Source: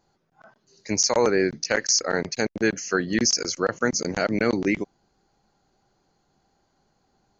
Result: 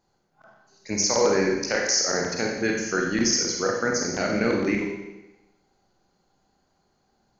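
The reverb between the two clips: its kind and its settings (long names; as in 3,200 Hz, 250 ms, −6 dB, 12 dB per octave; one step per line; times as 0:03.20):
four-comb reverb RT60 1 s, combs from 31 ms, DRR −0.5 dB
level −3.5 dB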